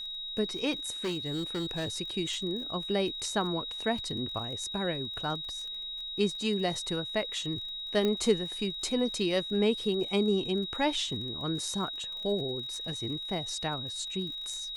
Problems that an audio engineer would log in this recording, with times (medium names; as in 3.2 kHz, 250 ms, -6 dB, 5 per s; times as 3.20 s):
crackle 38 per s -40 dBFS
whine 3.8 kHz -36 dBFS
1.04–1.88 s: clipped -28.5 dBFS
8.05 s: pop -17 dBFS